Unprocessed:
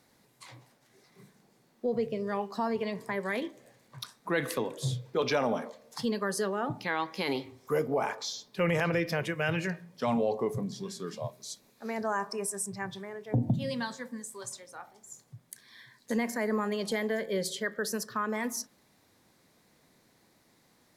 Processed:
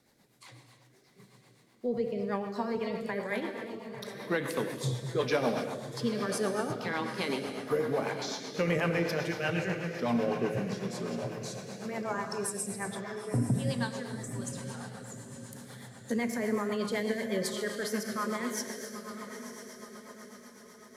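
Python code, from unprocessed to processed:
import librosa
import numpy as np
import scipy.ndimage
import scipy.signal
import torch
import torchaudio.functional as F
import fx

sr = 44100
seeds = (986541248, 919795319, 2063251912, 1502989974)

y = fx.echo_diffused(x, sr, ms=964, feedback_pct=47, wet_db=-9.5)
y = fx.rev_gated(y, sr, seeds[0], gate_ms=360, shape='flat', drr_db=4.5)
y = fx.rotary(y, sr, hz=8.0)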